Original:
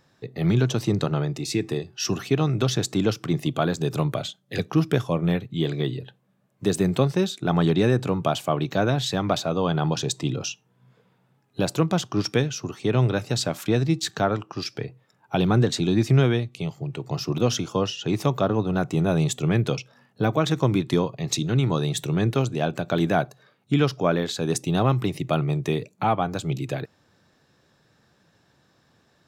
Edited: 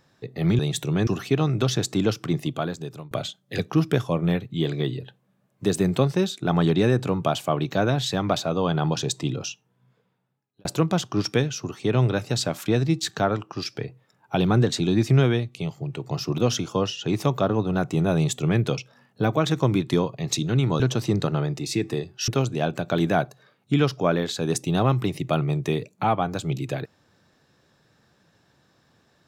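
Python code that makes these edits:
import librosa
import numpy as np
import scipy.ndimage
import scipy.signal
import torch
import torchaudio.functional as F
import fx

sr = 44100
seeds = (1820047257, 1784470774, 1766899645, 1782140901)

y = fx.edit(x, sr, fx.swap(start_s=0.59, length_s=1.48, other_s=21.8, other_length_s=0.48),
    fx.fade_out_to(start_s=3.28, length_s=0.83, floor_db=-23.5),
    fx.fade_out_span(start_s=10.18, length_s=1.47), tone=tone)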